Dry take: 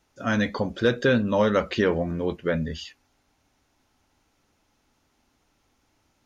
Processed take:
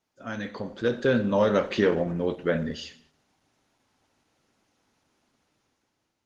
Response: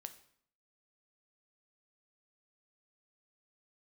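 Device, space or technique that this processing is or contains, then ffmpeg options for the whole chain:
far-field microphone of a smart speaker: -filter_complex "[0:a]asettb=1/sr,asplit=3[link_01][link_02][link_03];[link_01]atrim=end=0.884[link_04];[link_02]atrim=start=0.88:end=1.6,asetpts=PTS-STARTPTS,afade=type=in:duration=0.004:curve=qsin,afade=type=out:start_time=0.716:duration=0.004:curve=qsin,adynamicequalizer=threshold=0.01:dfrequency=2100:dqfactor=1:tfrequency=2100:tqfactor=1:attack=5:release=100:ratio=0.375:range=1.5:mode=cutabove:tftype=bell[link_05];[link_03]atrim=start=1.596[link_06];[link_04][link_05]acrossfade=duration=0.004:curve1=hsin:curve2=qsin[link_07];[link_07][link_06]acrossfade=duration=0.004:curve1=qsin:curve2=hsin[link_08];[1:a]atrim=start_sample=2205[link_09];[link_08][link_09]afir=irnorm=-1:irlink=0,highpass=110,dynaudnorm=framelen=370:gausssize=5:maxgain=10dB,volume=-4.5dB" -ar 48000 -c:a libopus -b:a 16k

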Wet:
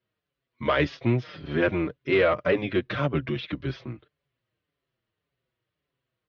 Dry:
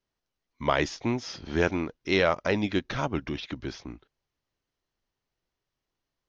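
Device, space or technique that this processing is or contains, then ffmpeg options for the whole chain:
barber-pole flanger into a guitar amplifier: -filter_complex "[0:a]asettb=1/sr,asplit=3[link_01][link_02][link_03];[link_01]atrim=end=1.234[link_04];[link_02]atrim=start=1.23:end=2.81,asetpts=PTS-STARTPTS,afade=type=in:duration=0.004:curve=qsin,afade=type=out:start_time=1.576:duration=0.004:curve=qsin,acrossover=split=3400[link_05][link_06];[link_06]acompressor=threshold=-52dB:ratio=4:attack=1:release=60[link_07];[link_05][link_07]amix=inputs=2:normalize=0[link_08];[link_03]atrim=start=2.806[link_09];[link_04][link_08]acrossfade=duration=0.004:curve1=hsin:curve2=qsin[link_10];[link_10][link_09]acrossfade=duration=0.004:curve1=qsin:curve2=hsin,asplit=2[link_11][link_12];[link_12]adelay=5.8,afreqshift=-1.8[link_13];[link_11][link_13]amix=inputs=2:normalize=1,asoftclip=type=tanh:threshold=-20dB,highpass=82,equalizer=frequency=130:width_type=q:width=4:gain=8,equalizer=frequency=240:width_type=q:width=4:gain=-3,equalizer=frequency=530:width_type=q:width=4:gain=3,equalizer=frequency=840:width_type=q:width=4:gain=-9,lowpass=frequency=3700:width=0.5412,lowpass=frequency=3700:width=1.3066,volume=7dB"

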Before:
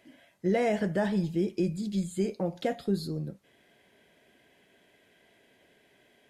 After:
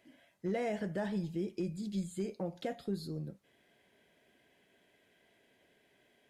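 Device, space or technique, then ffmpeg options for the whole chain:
clipper into limiter: -af "asoftclip=type=hard:threshold=-19dB,alimiter=limit=-21.5dB:level=0:latency=1:release=207,volume=-6dB"

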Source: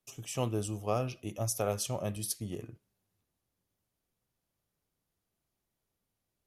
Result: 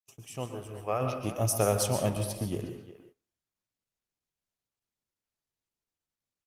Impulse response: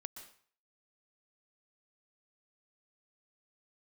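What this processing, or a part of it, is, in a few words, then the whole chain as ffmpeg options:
speakerphone in a meeting room: -filter_complex "[0:a]asplit=3[link_01][link_02][link_03];[link_01]afade=type=out:start_time=0.45:duration=0.02[link_04];[link_02]equalizer=frequency=125:width_type=o:width=1:gain=-7,equalizer=frequency=250:width_type=o:width=1:gain=-9,equalizer=frequency=2000:width_type=o:width=1:gain=8,equalizer=frequency=4000:width_type=o:width=1:gain=-11,equalizer=frequency=8000:width_type=o:width=1:gain=-10,afade=type=in:start_time=0.45:duration=0.02,afade=type=out:start_time=1:duration=0.02[link_05];[link_03]afade=type=in:start_time=1:duration=0.02[link_06];[link_04][link_05][link_06]amix=inputs=3:normalize=0,asettb=1/sr,asplit=3[link_07][link_08][link_09];[link_07]atrim=end=2.174[link_10];[link_08]atrim=start=2.17:end=2.63,asetpts=PTS-STARTPTS,afade=type=in:duration=0.004:curve=qsin,afade=type=out:start_time=0.456:duration=0.004:curve=qsin,acrossover=split=4200[link_11][link_12];[link_12]acompressor=threshold=-44dB:ratio=4:attack=1:release=60[link_13];[link_11][link_13]amix=inputs=2:normalize=0[link_14];[link_09]atrim=start=2.626[link_15];[link_10][link_14]acrossfade=duration=0.004:curve1=hsin:curve2=qsin[link_16];[link_16][link_15]acrossfade=duration=0.004:curve1=qsin:curve2=hsin[link_17];[1:a]atrim=start_sample=2205[link_18];[link_17][link_18]afir=irnorm=-1:irlink=0,asplit=2[link_19][link_20];[link_20]adelay=360,highpass=300,lowpass=3400,asoftclip=type=hard:threshold=-32.5dB,volume=-13dB[link_21];[link_19][link_21]amix=inputs=2:normalize=0,dynaudnorm=framelen=630:gausssize=3:maxgain=11dB,agate=range=-20dB:threshold=-54dB:ratio=16:detection=peak" -ar 48000 -c:a libopus -b:a 32k

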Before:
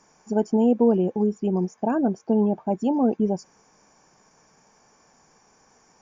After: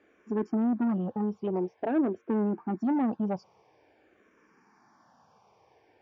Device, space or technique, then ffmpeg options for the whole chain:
barber-pole phaser into a guitar amplifier: -filter_complex "[0:a]asplit=2[link_01][link_02];[link_02]afreqshift=-0.49[link_03];[link_01][link_03]amix=inputs=2:normalize=1,asoftclip=type=tanh:threshold=-23dB,highpass=90,equalizer=frequency=95:width_type=q:width=4:gain=4,equalizer=frequency=160:width_type=q:width=4:gain=-6,equalizer=frequency=330:width_type=q:width=4:gain=5,lowpass=frequency=3900:width=0.5412,lowpass=frequency=3900:width=1.3066"

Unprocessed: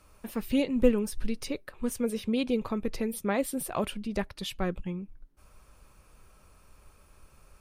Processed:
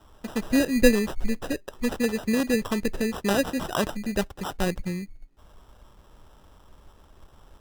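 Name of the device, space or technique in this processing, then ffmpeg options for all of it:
crushed at another speed: -af "asetrate=35280,aresample=44100,acrusher=samples=25:mix=1:aa=0.000001,asetrate=55125,aresample=44100,volume=4.5dB"

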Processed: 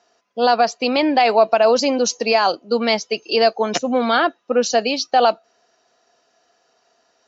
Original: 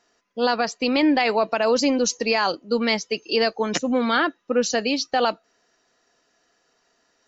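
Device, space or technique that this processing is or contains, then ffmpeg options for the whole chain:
car door speaker: -af "highpass=91,equalizer=frequency=120:width_type=q:width=4:gain=-4,equalizer=frequency=180:width_type=q:width=4:gain=-5,equalizer=frequency=290:width_type=q:width=4:gain=-5,equalizer=frequency=700:width_type=q:width=4:gain=7,equalizer=frequency=1900:width_type=q:width=4:gain=-5,lowpass=frequency=6900:width=0.5412,lowpass=frequency=6900:width=1.3066,volume=3.5dB"

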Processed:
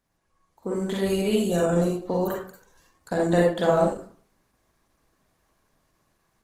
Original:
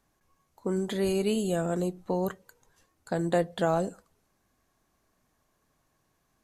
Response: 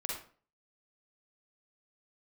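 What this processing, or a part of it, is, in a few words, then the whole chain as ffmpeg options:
speakerphone in a meeting room: -filter_complex "[1:a]atrim=start_sample=2205[link_01];[0:a][link_01]afir=irnorm=-1:irlink=0,dynaudnorm=framelen=400:gausssize=3:maxgain=6.5dB,volume=-2.5dB" -ar 48000 -c:a libopus -b:a 16k

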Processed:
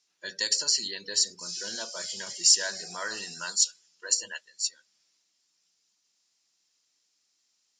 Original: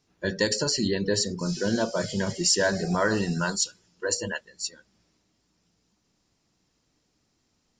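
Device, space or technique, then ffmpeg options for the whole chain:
piezo pickup straight into a mixer: -af "lowpass=7400,aderivative,volume=6.5dB"

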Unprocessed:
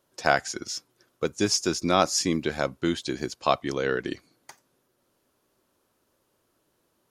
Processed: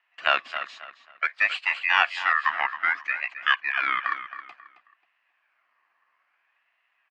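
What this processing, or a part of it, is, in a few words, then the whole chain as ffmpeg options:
voice changer toy: -filter_complex "[0:a]asettb=1/sr,asplit=3[link_01][link_02][link_03];[link_01]atrim=end=2.494[link_04];[link_02]atrim=start=2.49:end=3.73,asetpts=PTS-STARTPTS,afade=type=in:duration=0.004:curve=qsin,afade=type=out:start_time=1.236:duration=0.004:curve=qsin,highshelf=frequency=2700:gain=-8.5[link_05];[link_03]atrim=start=3.726[link_06];[link_04][link_05]acrossfade=duration=0.004:curve1=hsin:curve2=qsin[link_07];[link_07][link_06]acrossfade=duration=0.004:curve1=qsin:curve2=hsin,aeval=exprs='val(0)*sin(2*PI*1900*n/s+1900*0.25/0.59*sin(2*PI*0.59*n/s))':channel_layout=same,highpass=450,equalizer=frequency=450:width_type=q:width=4:gain=-9,equalizer=frequency=700:width_type=q:width=4:gain=6,equalizer=frequency=1100:width_type=q:width=4:gain=9,equalizer=frequency=1700:width_type=q:width=4:gain=7,equalizer=frequency=2500:width_type=q:width=4:gain=4,equalizer=frequency=3600:width_type=q:width=4:gain=-8,lowpass=frequency=3800:width=0.5412,lowpass=frequency=3800:width=1.3066,asplit=2[link_08][link_09];[link_09]adelay=269,lowpass=frequency=4800:poles=1,volume=-11dB,asplit=2[link_10][link_11];[link_11]adelay=269,lowpass=frequency=4800:poles=1,volume=0.3,asplit=2[link_12][link_13];[link_13]adelay=269,lowpass=frequency=4800:poles=1,volume=0.3[link_14];[link_08][link_10][link_12][link_14]amix=inputs=4:normalize=0"

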